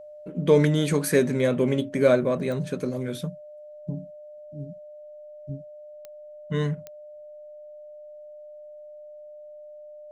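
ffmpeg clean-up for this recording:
ffmpeg -i in.wav -af "adeclick=threshold=4,bandreject=frequency=600:width=30" out.wav

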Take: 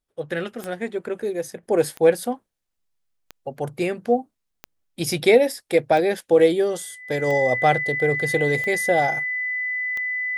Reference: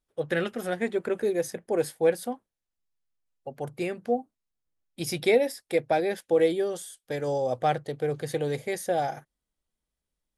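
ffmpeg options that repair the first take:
ffmpeg -i in.wav -af "adeclick=threshold=4,bandreject=frequency=2000:width=30,asetnsamples=nb_out_samples=441:pad=0,asendcmd='1.63 volume volume -6.5dB',volume=0dB" out.wav

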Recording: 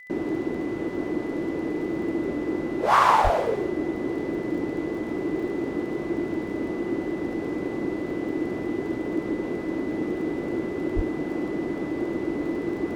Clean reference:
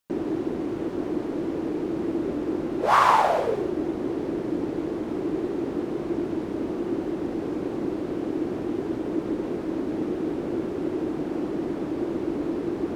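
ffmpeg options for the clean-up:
ffmpeg -i in.wav -filter_complex "[0:a]adeclick=threshold=4,bandreject=frequency=2000:width=30,asplit=3[link_01][link_02][link_03];[link_01]afade=type=out:start_time=3.23:duration=0.02[link_04];[link_02]highpass=frequency=140:width=0.5412,highpass=frequency=140:width=1.3066,afade=type=in:start_time=3.23:duration=0.02,afade=type=out:start_time=3.35:duration=0.02[link_05];[link_03]afade=type=in:start_time=3.35:duration=0.02[link_06];[link_04][link_05][link_06]amix=inputs=3:normalize=0,asplit=3[link_07][link_08][link_09];[link_07]afade=type=out:start_time=10.95:duration=0.02[link_10];[link_08]highpass=frequency=140:width=0.5412,highpass=frequency=140:width=1.3066,afade=type=in:start_time=10.95:duration=0.02,afade=type=out:start_time=11.07:duration=0.02[link_11];[link_09]afade=type=in:start_time=11.07:duration=0.02[link_12];[link_10][link_11][link_12]amix=inputs=3:normalize=0" out.wav

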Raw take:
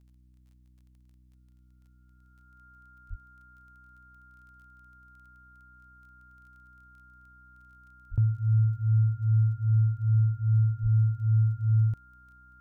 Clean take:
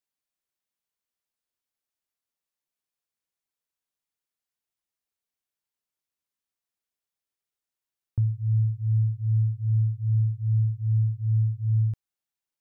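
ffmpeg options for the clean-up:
ffmpeg -i in.wav -filter_complex "[0:a]adeclick=threshold=4,bandreject=frequency=62.2:width_type=h:width=4,bandreject=frequency=124.4:width_type=h:width=4,bandreject=frequency=186.6:width_type=h:width=4,bandreject=frequency=248.8:width_type=h:width=4,bandreject=frequency=311:width_type=h:width=4,bandreject=frequency=1400:width=30,asplit=3[link_01][link_02][link_03];[link_01]afade=type=out:start_time=3.09:duration=0.02[link_04];[link_02]highpass=frequency=140:width=0.5412,highpass=frequency=140:width=1.3066,afade=type=in:start_time=3.09:duration=0.02,afade=type=out:start_time=3.21:duration=0.02[link_05];[link_03]afade=type=in:start_time=3.21:duration=0.02[link_06];[link_04][link_05][link_06]amix=inputs=3:normalize=0,asplit=3[link_07][link_08][link_09];[link_07]afade=type=out:start_time=8.1:duration=0.02[link_10];[link_08]highpass=frequency=140:width=0.5412,highpass=frequency=140:width=1.3066,afade=type=in:start_time=8.1:duration=0.02,afade=type=out:start_time=8.22:duration=0.02[link_11];[link_09]afade=type=in:start_time=8.22:duration=0.02[link_12];[link_10][link_11][link_12]amix=inputs=3:normalize=0,asplit=3[link_13][link_14][link_15];[link_13]afade=type=out:start_time=10.82:duration=0.02[link_16];[link_14]highpass=frequency=140:width=0.5412,highpass=frequency=140:width=1.3066,afade=type=in:start_time=10.82:duration=0.02,afade=type=out:start_time=10.94:duration=0.02[link_17];[link_15]afade=type=in:start_time=10.94:duration=0.02[link_18];[link_16][link_17][link_18]amix=inputs=3:normalize=0" out.wav

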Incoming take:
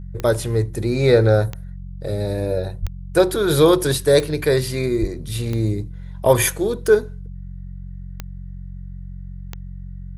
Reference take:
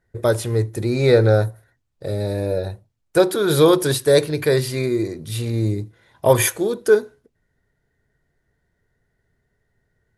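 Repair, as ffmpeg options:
ffmpeg -i in.wav -filter_complex "[0:a]adeclick=threshold=4,bandreject=frequency=45.5:width_type=h:width=4,bandreject=frequency=91:width_type=h:width=4,bandreject=frequency=136.5:width_type=h:width=4,bandreject=frequency=182:width_type=h:width=4,asplit=3[link_01][link_02][link_03];[link_01]afade=type=out:start_time=2.81:duration=0.02[link_04];[link_02]highpass=frequency=140:width=0.5412,highpass=frequency=140:width=1.3066,afade=type=in:start_time=2.81:duration=0.02,afade=type=out:start_time=2.93:duration=0.02[link_05];[link_03]afade=type=in:start_time=2.93:duration=0.02[link_06];[link_04][link_05][link_06]amix=inputs=3:normalize=0,asplit=3[link_07][link_08][link_09];[link_07]afade=type=out:start_time=5:duration=0.02[link_10];[link_08]highpass=frequency=140:width=0.5412,highpass=frequency=140:width=1.3066,afade=type=in:start_time=5:duration=0.02,afade=type=out:start_time=5.12:duration=0.02[link_11];[link_09]afade=type=in:start_time=5.12:duration=0.02[link_12];[link_10][link_11][link_12]amix=inputs=3:normalize=0" out.wav

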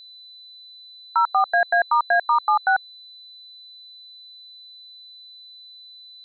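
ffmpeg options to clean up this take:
ffmpeg -i in.wav -af "bandreject=frequency=4000:width=30" out.wav

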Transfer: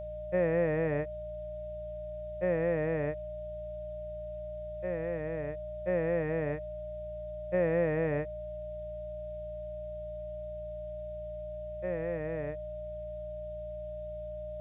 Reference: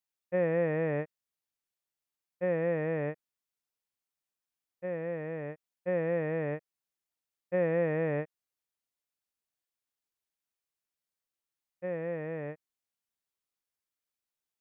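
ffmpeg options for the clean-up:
ffmpeg -i in.wav -af "bandreject=frequency=58.3:width_type=h:width=4,bandreject=frequency=116.6:width_type=h:width=4,bandreject=frequency=174.9:width_type=h:width=4,bandreject=frequency=610:width=30,agate=range=-21dB:threshold=-32dB" out.wav

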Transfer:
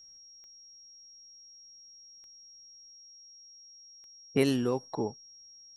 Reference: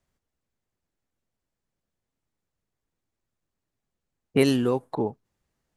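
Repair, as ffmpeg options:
ffmpeg -i in.wav -af "adeclick=threshold=4,bandreject=frequency=5600:width=30,asetnsamples=nb_out_samples=441:pad=0,asendcmd='2.92 volume volume 5.5dB',volume=0dB" out.wav

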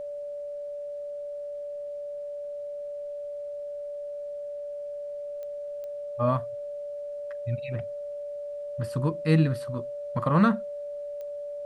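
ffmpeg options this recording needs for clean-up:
ffmpeg -i in.wav -af "adeclick=threshold=4,bandreject=frequency=580:width=30,agate=range=-21dB:threshold=-28dB" out.wav

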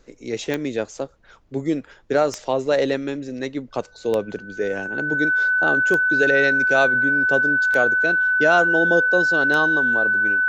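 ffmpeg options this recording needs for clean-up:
ffmpeg -i in.wav -af "adeclick=threshold=4,bandreject=frequency=1500:width=30,agate=range=-21dB:threshold=-38dB" out.wav

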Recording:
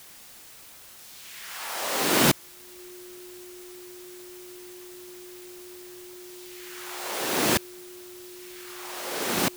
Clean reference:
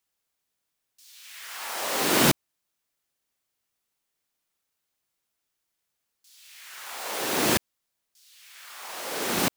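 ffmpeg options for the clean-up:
ffmpeg -i in.wav -af "bandreject=frequency=360:width=30,afwtdn=0.004" out.wav

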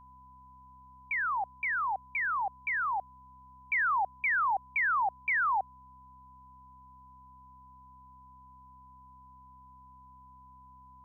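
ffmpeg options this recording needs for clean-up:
ffmpeg -i in.wav -af "bandreject=frequency=65:width_type=h:width=4,bandreject=frequency=130:width_type=h:width=4,bandreject=frequency=195:width_type=h:width=4,bandreject=frequency=260:width_type=h:width=4,bandreject=frequency=1000:width=30,agate=range=-21dB:threshold=-47dB" out.wav

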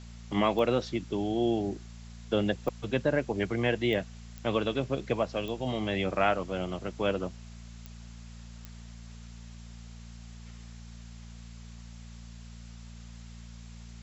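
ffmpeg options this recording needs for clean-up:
ffmpeg -i in.wav -af "adeclick=threshold=4,bandreject=frequency=57.6:width_type=h:width=4,bandreject=frequency=115.2:width_type=h:width=4,bandreject=frequency=172.8:width_type=h:width=4,bandreject=frequency=230.4:width_type=h:width=4,afftdn=noise_reduction=29:noise_floor=-46" out.wav

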